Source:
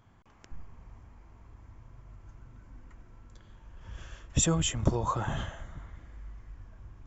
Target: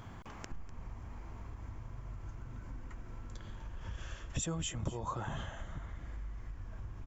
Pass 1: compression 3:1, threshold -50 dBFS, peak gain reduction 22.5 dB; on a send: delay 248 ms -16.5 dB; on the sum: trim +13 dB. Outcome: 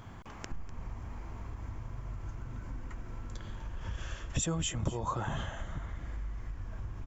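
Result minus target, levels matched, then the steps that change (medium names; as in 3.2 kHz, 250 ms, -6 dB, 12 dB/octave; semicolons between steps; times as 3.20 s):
compression: peak gain reduction -4.5 dB
change: compression 3:1, threshold -56.5 dBFS, peak gain reduction 27 dB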